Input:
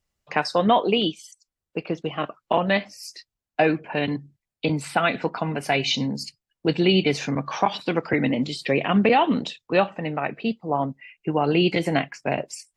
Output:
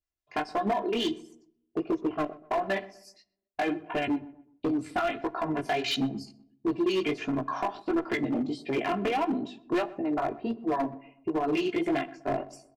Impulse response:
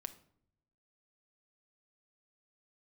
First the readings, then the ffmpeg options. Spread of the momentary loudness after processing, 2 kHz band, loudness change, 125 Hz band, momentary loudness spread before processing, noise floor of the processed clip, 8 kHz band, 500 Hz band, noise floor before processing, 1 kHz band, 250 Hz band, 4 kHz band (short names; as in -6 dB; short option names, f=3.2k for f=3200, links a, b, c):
7 LU, -8.5 dB, -6.5 dB, -13.5 dB, 12 LU, -79 dBFS, -10.5 dB, -6.5 dB, under -85 dBFS, -6.5 dB, -5.0 dB, -9.5 dB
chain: -filter_complex "[0:a]afwtdn=0.0398,aecho=1:1:2.9:0.85,acompressor=threshold=-21dB:ratio=20,acrossover=split=810[a][b];[a]aeval=exprs='val(0)*(1-0.5/2+0.5/2*cos(2*PI*7.3*n/s))':c=same[c];[b]aeval=exprs='val(0)*(1-0.5/2-0.5/2*cos(2*PI*7.3*n/s))':c=same[d];[c][d]amix=inputs=2:normalize=0,flanger=delay=15:depth=6.3:speed=1.5,asoftclip=type=hard:threshold=-26.5dB,asplit=2[e][f];[f]adelay=125,lowpass=f=1.4k:p=1,volume=-18.5dB,asplit=2[g][h];[h]adelay=125,lowpass=f=1.4k:p=1,volume=0.43,asplit=2[i][j];[j]adelay=125,lowpass=f=1.4k:p=1,volume=0.43[k];[e][g][i][k]amix=inputs=4:normalize=0,asplit=2[l][m];[1:a]atrim=start_sample=2205[n];[m][n]afir=irnorm=-1:irlink=0,volume=-1.5dB[o];[l][o]amix=inputs=2:normalize=0"